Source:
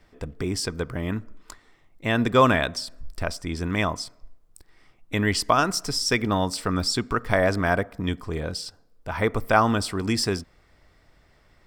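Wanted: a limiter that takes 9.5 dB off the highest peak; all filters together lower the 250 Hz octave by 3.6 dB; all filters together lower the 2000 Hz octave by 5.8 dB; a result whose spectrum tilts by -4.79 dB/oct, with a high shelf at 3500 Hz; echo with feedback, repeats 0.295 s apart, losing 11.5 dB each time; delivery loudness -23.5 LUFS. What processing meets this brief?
bell 250 Hz -4.5 dB; bell 2000 Hz -6.5 dB; high shelf 3500 Hz -4.5 dB; limiter -16.5 dBFS; feedback echo 0.295 s, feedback 27%, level -11.5 dB; gain +6 dB

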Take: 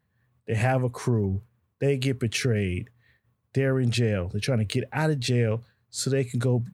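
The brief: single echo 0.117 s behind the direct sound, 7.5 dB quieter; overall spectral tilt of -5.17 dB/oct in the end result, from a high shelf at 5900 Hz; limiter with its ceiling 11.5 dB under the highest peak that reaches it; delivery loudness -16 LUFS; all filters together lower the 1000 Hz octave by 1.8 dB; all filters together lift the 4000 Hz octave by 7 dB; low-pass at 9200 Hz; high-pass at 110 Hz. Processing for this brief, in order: HPF 110 Hz; LPF 9200 Hz; bell 1000 Hz -3 dB; bell 4000 Hz +7.5 dB; high shelf 5900 Hz +3.5 dB; limiter -17.5 dBFS; echo 0.117 s -7.5 dB; gain +12 dB

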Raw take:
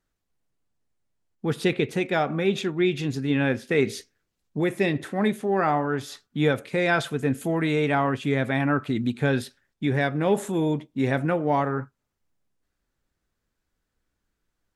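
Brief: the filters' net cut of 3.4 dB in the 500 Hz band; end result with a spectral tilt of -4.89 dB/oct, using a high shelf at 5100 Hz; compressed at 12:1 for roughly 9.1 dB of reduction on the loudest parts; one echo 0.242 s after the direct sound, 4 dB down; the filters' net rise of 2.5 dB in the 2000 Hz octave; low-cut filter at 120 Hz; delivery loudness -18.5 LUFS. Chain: HPF 120 Hz; bell 500 Hz -4.5 dB; bell 2000 Hz +4 dB; high shelf 5100 Hz -4.5 dB; compressor 12:1, threshold -27 dBFS; echo 0.242 s -4 dB; gain +13 dB

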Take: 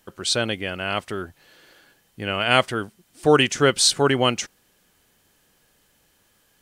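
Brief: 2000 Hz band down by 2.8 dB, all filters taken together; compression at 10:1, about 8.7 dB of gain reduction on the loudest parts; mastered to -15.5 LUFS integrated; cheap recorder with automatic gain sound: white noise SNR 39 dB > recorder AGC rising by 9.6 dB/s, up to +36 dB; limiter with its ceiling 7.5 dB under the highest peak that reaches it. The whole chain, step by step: bell 2000 Hz -4 dB; compressor 10:1, threshold -20 dBFS; limiter -17 dBFS; white noise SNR 39 dB; recorder AGC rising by 9.6 dB/s, up to +36 dB; gain +14 dB

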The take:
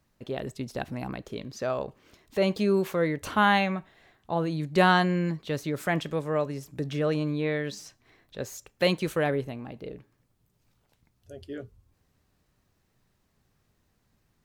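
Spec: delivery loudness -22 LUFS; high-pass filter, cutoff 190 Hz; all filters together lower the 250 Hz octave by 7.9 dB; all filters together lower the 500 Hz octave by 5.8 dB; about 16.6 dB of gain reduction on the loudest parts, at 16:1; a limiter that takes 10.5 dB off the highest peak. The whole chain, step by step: HPF 190 Hz; bell 250 Hz -7.5 dB; bell 500 Hz -5 dB; compressor 16:1, threshold -34 dBFS; gain +21 dB; limiter -9 dBFS

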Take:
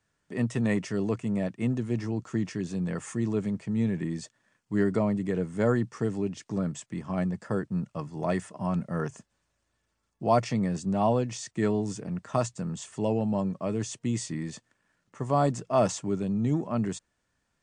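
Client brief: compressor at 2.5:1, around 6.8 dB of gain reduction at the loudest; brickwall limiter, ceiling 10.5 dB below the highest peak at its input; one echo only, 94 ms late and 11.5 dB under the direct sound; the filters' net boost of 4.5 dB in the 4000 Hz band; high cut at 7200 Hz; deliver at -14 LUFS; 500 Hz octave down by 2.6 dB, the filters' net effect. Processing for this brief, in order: LPF 7200 Hz; bell 500 Hz -3.5 dB; bell 4000 Hz +6.5 dB; compressor 2.5:1, threshold -29 dBFS; limiter -27.5 dBFS; echo 94 ms -11.5 dB; gain +22.5 dB

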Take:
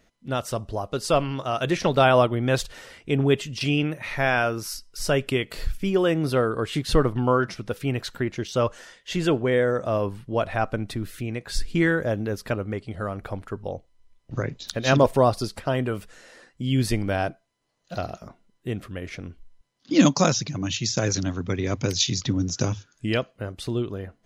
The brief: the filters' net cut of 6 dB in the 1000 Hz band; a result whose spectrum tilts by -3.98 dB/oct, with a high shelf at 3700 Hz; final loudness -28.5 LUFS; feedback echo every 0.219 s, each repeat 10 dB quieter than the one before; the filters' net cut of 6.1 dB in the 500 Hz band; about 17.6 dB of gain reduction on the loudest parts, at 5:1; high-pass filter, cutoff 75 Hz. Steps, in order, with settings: HPF 75 Hz; bell 500 Hz -6 dB; bell 1000 Hz -7 dB; high shelf 3700 Hz +7 dB; compressor 5:1, threshold -34 dBFS; feedback echo 0.219 s, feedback 32%, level -10 dB; gain +8.5 dB

